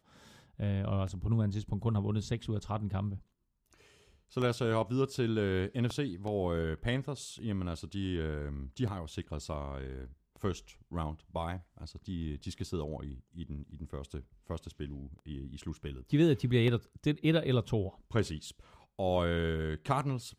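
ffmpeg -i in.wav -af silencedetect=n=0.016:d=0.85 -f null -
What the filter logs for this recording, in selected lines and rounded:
silence_start: 3.16
silence_end: 4.37 | silence_duration: 1.20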